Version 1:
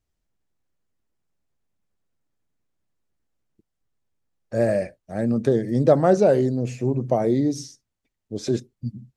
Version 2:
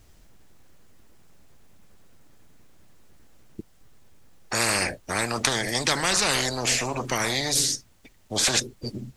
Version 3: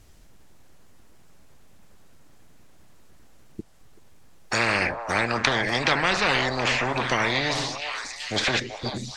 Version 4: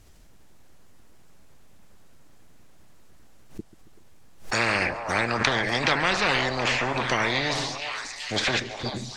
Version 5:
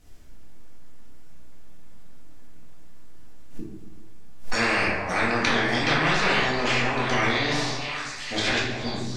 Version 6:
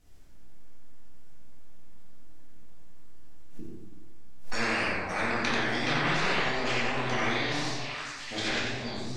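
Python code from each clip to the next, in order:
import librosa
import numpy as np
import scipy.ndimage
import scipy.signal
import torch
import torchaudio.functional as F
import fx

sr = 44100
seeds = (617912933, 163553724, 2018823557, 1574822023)

y1 = fx.spectral_comp(x, sr, ratio=10.0)
y1 = y1 * 10.0 ** (1.5 / 20.0)
y2 = fx.echo_stepped(y1, sr, ms=382, hz=790.0, octaves=0.7, feedback_pct=70, wet_db=-4.0)
y2 = fx.env_lowpass_down(y2, sr, base_hz=2800.0, full_db=-21.0)
y2 = fx.dynamic_eq(y2, sr, hz=2700.0, q=0.8, threshold_db=-40.0, ratio=4.0, max_db=4)
y2 = y2 * 10.0 ** (1.5 / 20.0)
y3 = fx.echo_feedback(y2, sr, ms=138, feedback_pct=54, wet_db=-18.5)
y3 = fx.pre_swell(y3, sr, db_per_s=140.0)
y3 = y3 * 10.0 ** (-1.0 / 20.0)
y4 = fx.room_shoebox(y3, sr, seeds[0], volume_m3=260.0, walls='mixed', distance_m=1.9)
y4 = y4 * 10.0 ** (-5.0 / 20.0)
y5 = fx.echo_warbled(y4, sr, ms=89, feedback_pct=35, rate_hz=2.8, cents=105, wet_db=-4.5)
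y5 = y5 * 10.0 ** (-7.0 / 20.0)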